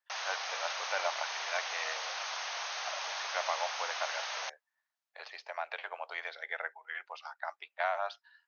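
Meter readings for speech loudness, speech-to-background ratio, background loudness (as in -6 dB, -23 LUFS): -39.0 LUFS, -2.5 dB, -36.5 LUFS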